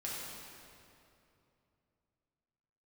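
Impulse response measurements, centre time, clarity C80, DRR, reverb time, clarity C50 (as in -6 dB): 0.149 s, -0.5 dB, -6.5 dB, 2.8 s, -2.5 dB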